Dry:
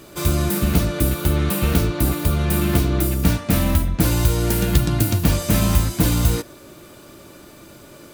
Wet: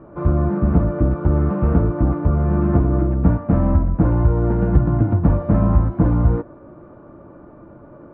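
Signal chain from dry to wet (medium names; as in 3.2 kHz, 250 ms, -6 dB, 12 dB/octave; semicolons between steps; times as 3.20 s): low-pass 1.2 kHz 24 dB/octave; band-stop 390 Hz, Q 12; trim +2.5 dB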